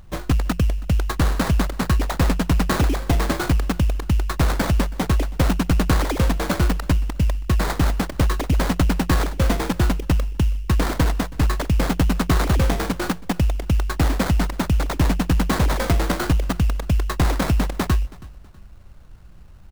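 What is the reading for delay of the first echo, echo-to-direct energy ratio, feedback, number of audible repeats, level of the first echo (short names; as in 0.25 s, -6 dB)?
0.324 s, -21.5 dB, 35%, 2, -22.0 dB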